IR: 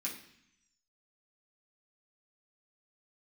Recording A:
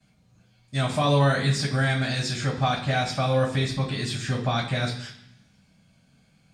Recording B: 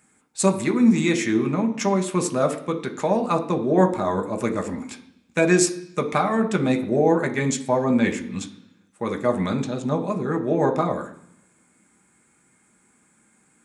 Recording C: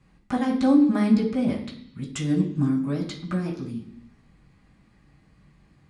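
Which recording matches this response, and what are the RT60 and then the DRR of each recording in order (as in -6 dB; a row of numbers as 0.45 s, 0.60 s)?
C; 0.65 s, 0.70 s, 0.70 s; -15.0 dB, 3.5 dB, -6.0 dB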